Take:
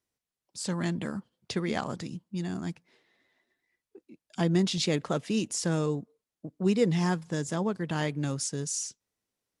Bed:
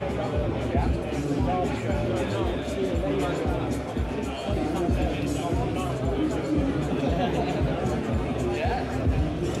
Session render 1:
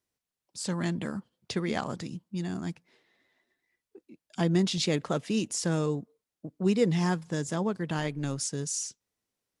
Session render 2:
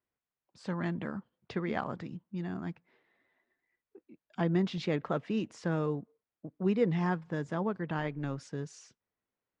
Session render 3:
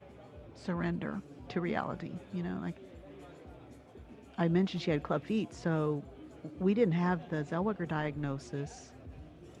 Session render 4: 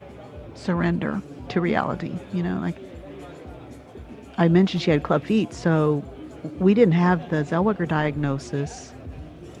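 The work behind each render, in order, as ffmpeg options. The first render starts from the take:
-filter_complex "[0:a]asplit=3[a][b][c];[a]afade=t=out:st=7.97:d=0.02[d];[b]tremolo=f=140:d=0.4,afade=t=in:st=7.97:d=0.02,afade=t=out:st=8.37:d=0.02[e];[c]afade=t=in:st=8.37:d=0.02[f];[d][e][f]amix=inputs=3:normalize=0"
-af "lowpass=1.6k,tiltshelf=f=1.1k:g=-4"
-filter_complex "[1:a]volume=-25dB[a];[0:a][a]amix=inputs=2:normalize=0"
-af "volume=11.5dB"

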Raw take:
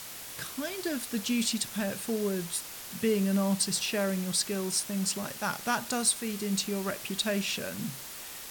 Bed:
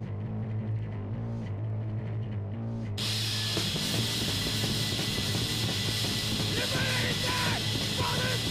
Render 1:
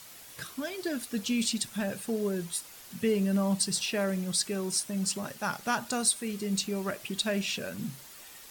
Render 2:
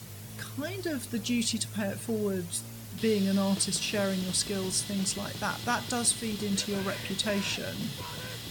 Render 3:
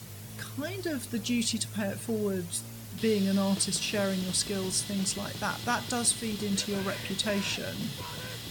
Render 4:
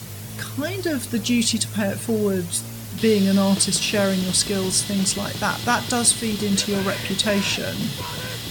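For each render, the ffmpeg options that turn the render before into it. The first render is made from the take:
-af "afftdn=nr=8:nf=-43"
-filter_complex "[1:a]volume=-10.5dB[a];[0:a][a]amix=inputs=2:normalize=0"
-af anull
-af "volume=9dB"

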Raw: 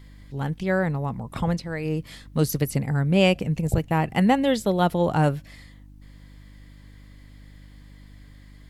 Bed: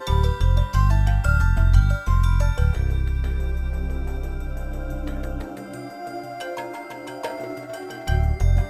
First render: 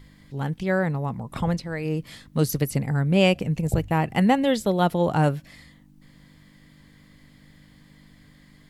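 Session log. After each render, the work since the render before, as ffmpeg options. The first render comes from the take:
-af "bandreject=f=50:t=h:w=4,bandreject=f=100:t=h:w=4"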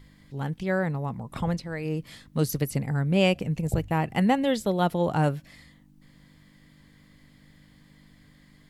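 -af "volume=-3dB"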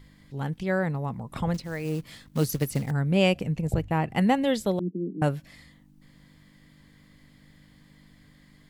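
-filter_complex "[0:a]asettb=1/sr,asplit=3[a][b][c];[a]atrim=end=1.544[d];[b]atrim=start=1.54:end=2.91,asetpts=PTS-STARTPTS,afade=t=in:d=0.004:c=qsin,afade=t=out:st=1.366:d=0.004:c=qsin,acrusher=bits=5:mode=log:mix=0:aa=0.000001[e];[c]atrim=start=2.906[f];[d][e]acrossfade=d=0.004:c1=hsin:c2=qsin[g];[g][f]acrossfade=d=0.004:c1=qsin:c2=hsin,asettb=1/sr,asplit=3[h][i][j];[h]atrim=end=3.514[k];[i]atrim=start=3.51:end=4.17,asetpts=PTS-STARTPTS,afade=t=in:d=0.004:c=qsin,afade=t=out:st=0.656:d=0.004:c=qsin,highshelf=f=4.9k:g=-6.5[l];[j]atrim=start=4.166[m];[k][l]acrossfade=d=0.004:c1=hsin:c2=qsin[n];[n][m]acrossfade=d=0.004:c1=qsin:c2=hsin,asettb=1/sr,asplit=3[o][p][q];[o]atrim=end=4.794[r];[p]atrim=start=4.79:end=5.22,asetpts=PTS-STARTPTS,afade=t=in:d=0.004:c=qsin,afade=t=out:st=0.426:d=0.004:c=qsin,asuperpass=centerf=270:order=12:qfactor=1.2[s];[q]atrim=start=5.216[t];[r][s]acrossfade=d=0.004:c1=hsin:c2=qsin[u];[u][t]acrossfade=d=0.004:c1=qsin:c2=hsin"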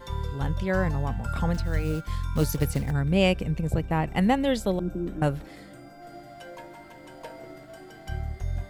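-filter_complex "[1:a]volume=-12dB[a];[0:a][a]amix=inputs=2:normalize=0"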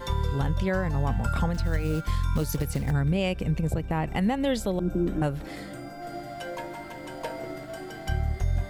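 -filter_complex "[0:a]asplit=2[a][b];[b]acompressor=threshold=-30dB:ratio=6,volume=2dB[c];[a][c]amix=inputs=2:normalize=0,alimiter=limit=-16dB:level=0:latency=1:release=206"

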